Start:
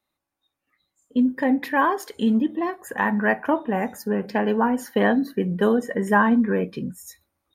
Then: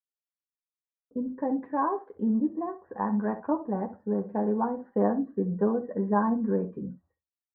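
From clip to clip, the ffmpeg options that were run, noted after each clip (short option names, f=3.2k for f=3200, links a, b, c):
-filter_complex "[0:a]lowpass=f=1.1k:w=0.5412,lowpass=f=1.1k:w=1.3066,agate=range=-33dB:threshold=-51dB:ratio=3:detection=peak,asplit=2[a][b];[b]aecho=0:1:10|66:0.562|0.211[c];[a][c]amix=inputs=2:normalize=0,volume=-7dB"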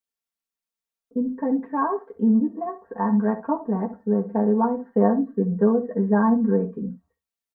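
-af "aecho=1:1:4.4:0.81,volume=2.5dB"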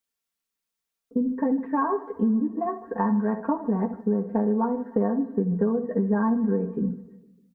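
-af "equalizer=f=700:t=o:w=0.77:g=-3,acompressor=threshold=-26dB:ratio=5,aecho=1:1:152|304|456|608:0.112|0.0595|0.0315|0.0167,volume=5dB"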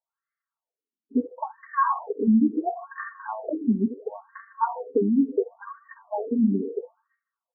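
-af "afftfilt=real='re*between(b*sr/1024,270*pow(1600/270,0.5+0.5*sin(2*PI*0.73*pts/sr))/1.41,270*pow(1600/270,0.5+0.5*sin(2*PI*0.73*pts/sr))*1.41)':imag='im*between(b*sr/1024,270*pow(1600/270,0.5+0.5*sin(2*PI*0.73*pts/sr))/1.41,270*pow(1600/270,0.5+0.5*sin(2*PI*0.73*pts/sr))*1.41)':win_size=1024:overlap=0.75,volume=5.5dB"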